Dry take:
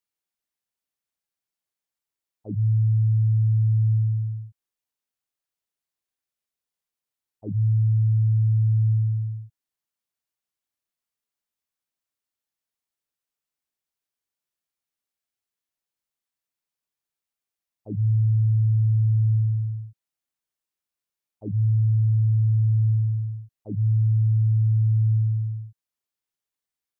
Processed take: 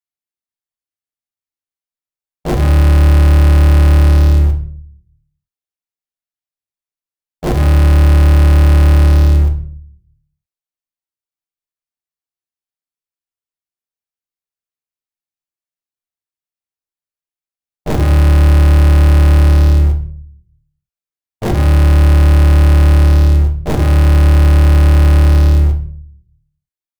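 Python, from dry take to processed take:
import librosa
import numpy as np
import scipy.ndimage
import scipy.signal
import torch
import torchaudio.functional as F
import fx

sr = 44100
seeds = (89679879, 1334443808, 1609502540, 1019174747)

p1 = fx.cycle_switch(x, sr, every=3, mode='inverted')
p2 = fx.leveller(p1, sr, passes=5)
p3 = fx.schmitt(p2, sr, flips_db=-29.0)
p4 = p2 + (p3 * 10.0 ** (-9.0 / 20.0))
p5 = fx.peak_eq(p4, sr, hz=68.0, db=2.5, octaves=0.77)
p6 = fx.room_shoebox(p5, sr, seeds[0], volume_m3=60.0, walls='mixed', distance_m=0.45)
y = p6 * 10.0 ** (1.5 / 20.0)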